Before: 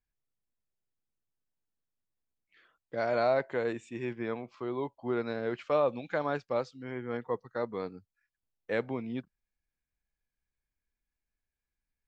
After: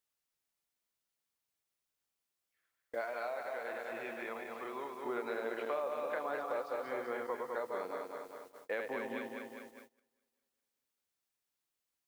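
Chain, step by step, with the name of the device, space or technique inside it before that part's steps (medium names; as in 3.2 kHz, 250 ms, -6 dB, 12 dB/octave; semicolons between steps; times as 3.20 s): backward echo that repeats 101 ms, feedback 76%, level -4.5 dB; baby monitor (band-pass 470–3100 Hz; compression, threshold -35 dBFS, peak gain reduction 12 dB; white noise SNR 25 dB; gate -54 dBFS, range -22 dB); 3.01–5.06 s: peaking EQ 350 Hz -6 dB 2 oct; trim +1 dB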